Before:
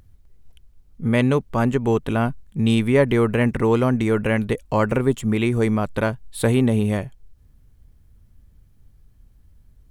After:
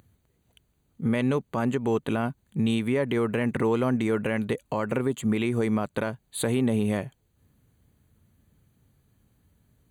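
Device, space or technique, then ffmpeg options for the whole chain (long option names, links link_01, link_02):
PA system with an anti-feedback notch: -af "highpass=130,asuperstop=centerf=5300:order=20:qfactor=5.1,alimiter=limit=-16dB:level=0:latency=1:release=183"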